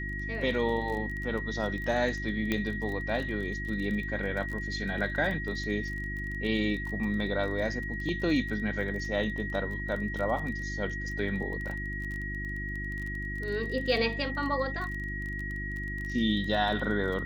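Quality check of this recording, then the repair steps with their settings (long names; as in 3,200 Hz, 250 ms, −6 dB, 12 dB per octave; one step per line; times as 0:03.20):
surface crackle 21 per second −35 dBFS
mains hum 50 Hz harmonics 7 −37 dBFS
whistle 1,900 Hz −36 dBFS
0:02.52: click −15 dBFS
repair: click removal
hum removal 50 Hz, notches 7
notch filter 1,900 Hz, Q 30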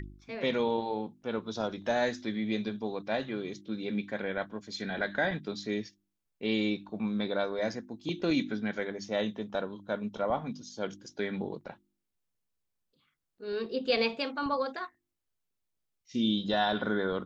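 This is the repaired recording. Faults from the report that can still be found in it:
none of them is left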